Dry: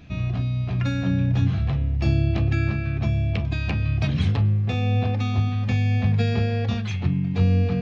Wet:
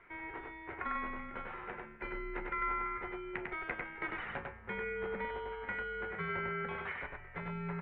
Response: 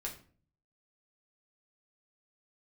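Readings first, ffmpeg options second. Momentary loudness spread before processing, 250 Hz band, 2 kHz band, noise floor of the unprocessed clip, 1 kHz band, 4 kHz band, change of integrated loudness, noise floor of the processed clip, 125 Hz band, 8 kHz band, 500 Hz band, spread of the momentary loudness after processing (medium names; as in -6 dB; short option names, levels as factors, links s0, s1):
4 LU, -20.5 dB, -3.5 dB, -27 dBFS, -2.5 dB, -19.0 dB, -16.5 dB, -52 dBFS, -30.5 dB, no reading, -9.0 dB, 8 LU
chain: -filter_complex "[0:a]asplit=2[s0][s1];[s1]alimiter=limit=0.1:level=0:latency=1,volume=0.75[s2];[s0][s2]amix=inputs=2:normalize=0,aderivative,highpass=f=310:t=q:w=0.5412,highpass=f=310:t=q:w=1.307,lowpass=f=2100:t=q:w=0.5176,lowpass=f=2100:t=q:w=0.7071,lowpass=f=2100:t=q:w=1.932,afreqshift=-300,aecho=1:1:99:0.708,volume=2.82"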